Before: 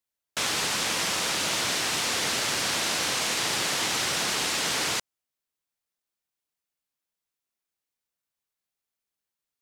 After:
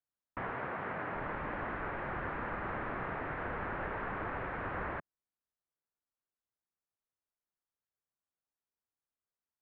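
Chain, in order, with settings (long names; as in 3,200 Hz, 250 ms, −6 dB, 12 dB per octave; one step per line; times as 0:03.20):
single-sideband voice off tune −360 Hz 250–2,100 Hz
0:00.50–0:01.15: high-pass filter 120 Hz 12 dB per octave
level −5.5 dB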